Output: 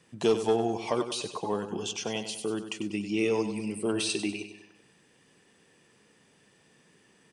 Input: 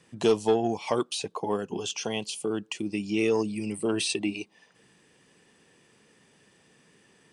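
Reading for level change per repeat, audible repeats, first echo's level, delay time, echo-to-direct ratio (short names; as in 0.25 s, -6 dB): -6.5 dB, 4, -10.0 dB, 97 ms, -9.0 dB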